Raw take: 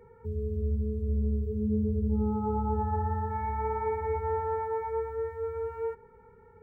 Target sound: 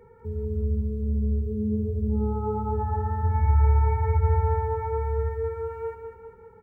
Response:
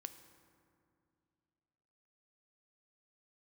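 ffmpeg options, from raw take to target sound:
-filter_complex "[0:a]asplit=3[a][b][c];[a]afade=t=out:st=3.22:d=0.02[d];[b]asubboost=boost=9.5:cutoff=110,afade=t=in:st=3.22:d=0.02,afade=t=out:st=5.3:d=0.02[e];[c]afade=t=in:st=5.3:d=0.02[f];[d][e][f]amix=inputs=3:normalize=0,aecho=1:1:196|392|588|784|980|1176:0.447|0.228|0.116|0.0593|0.0302|0.0154,volume=2dB"

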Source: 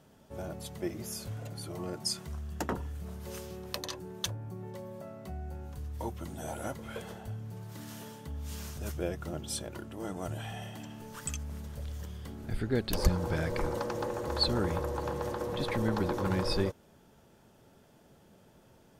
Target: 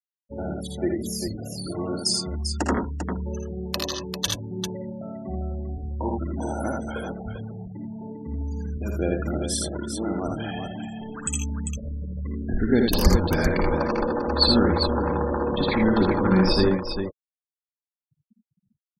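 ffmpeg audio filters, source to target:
-filter_complex "[0:a]afftfilt=real='re*gte(hypot(re,im),0.0126)':imag='im*gte(hypot(re,im),0.0126)':win_size=1024:overlap=0.75,equalizer=f=125:t=o:w=1:g=-8,equalizer=f=250:t=o:w=1:g=6,equalizer=f=500:t=o:w=1:g=-3,asplit=2[a][b];[b]aecho=0:1:54|59|80|94|396:0.266|0.376|0.631|0.1|0.447[c];[a][c]amix=inputs=2:normalize=0,volume=8.5dB"

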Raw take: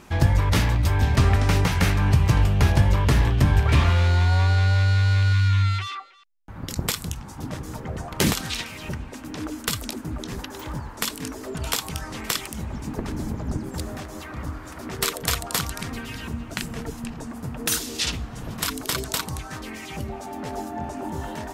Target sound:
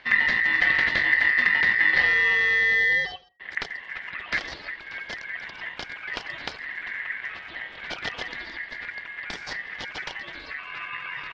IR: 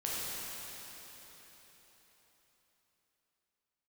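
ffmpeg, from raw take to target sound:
-filter_complex "[0:a]atempo=1.9,lowpass=f=3k:w=0.5412,lowpass=f=3k:w=1.3066,aeval=exprs='val(0)*sin(2*PI*1900*n/s)':c=same,asplit=2[a][b];[b]adelay=82,lowpass=f=1.6k:p=1,volume=-21dB,asplit=2[c][d];[d]adelay=82,lowpass=f=1.6k:p=1,volume=0.32[e];[c][e]amix=inputs=2:normalize=0[f];[a][f]amix=inputs=2:normalize=0"

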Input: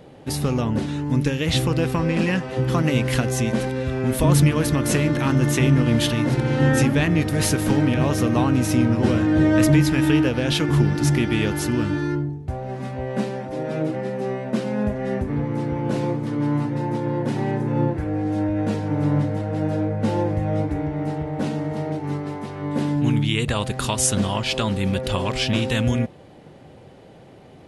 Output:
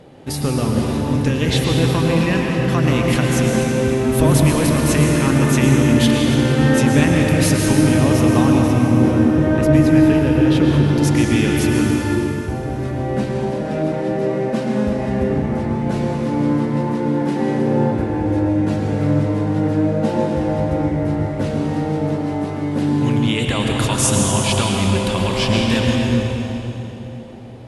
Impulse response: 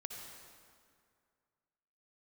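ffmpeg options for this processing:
-filter_complex "[0:a]asettb=1/sr,asplit=3[a][b][c];[a]atrim=end=8.614[d];[b]atrim=start=8.61:end=10.89,asetpts=PTS-STARTPTS,afade=t=in:d=0.004:c=qsin,afade=t=out:st=2.276:d=0.004:c=qsin,highshelf=f=2.1k:g=-11[e];[c]atrim=start=10.886[f];[d][e]acrossfade=d=0.004:c1=hsin:c2=qsin[g];[g][f]acrossfade=d=0.004:c1=qsin:c2=hsin[h];[1:a]atrim=start_sample=2205,asetrate=24255,aresample=44100[i];[h][i]afir=irnorm=-1:irlink=0,volume=3dB"

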